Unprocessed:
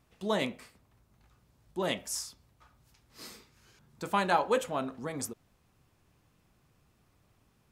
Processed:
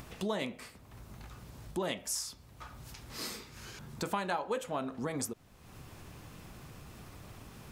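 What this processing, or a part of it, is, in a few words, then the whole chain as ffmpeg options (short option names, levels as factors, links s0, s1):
upward and downward compression: -af "acompressor=mode=upward:threshold=0.00501:ratio=2.5,acompressor=threshold=0.00891:ratio=4,volume=2.37"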